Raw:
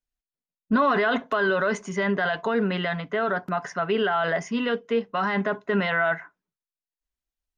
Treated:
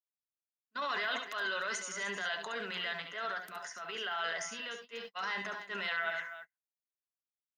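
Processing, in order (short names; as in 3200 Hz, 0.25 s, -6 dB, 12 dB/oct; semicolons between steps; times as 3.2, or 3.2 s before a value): differentiator; transient shaper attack -8 dB, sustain +5 dB; low shelf 86 Hz -9 dB; tapped delay 66/72/299 ms -11/-9.5/-13 dB; gate -50 dBFS, range -42 dB; 3.02–5.05 tremolo triangle 1 Hz, depth 55%; three-band squash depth 40%; gain +4 dB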